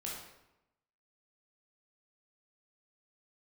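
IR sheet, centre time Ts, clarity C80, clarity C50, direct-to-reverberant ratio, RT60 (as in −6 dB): 57 ms, 4.5 dB, 1.0 dB, −4.5 dB, 0.90 s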